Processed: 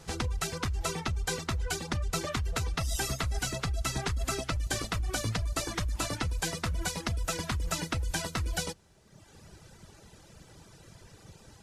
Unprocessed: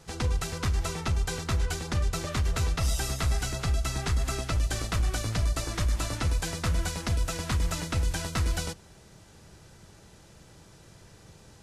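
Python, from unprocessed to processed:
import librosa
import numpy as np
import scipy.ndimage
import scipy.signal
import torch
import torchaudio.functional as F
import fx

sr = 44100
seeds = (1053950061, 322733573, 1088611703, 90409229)

p1 = fx.dereverb_blind(x, sr, rt60_s=1.2)
p2 = fx.over_compress(p1, sr, threshold_db=-31.0, ratio=-0.5)
p3 = p1 + F.gain(torch.from_numpy(p2), 2.0).numpy()
y = F.gain(torch.from_numpy(p3), -7.0).numpy()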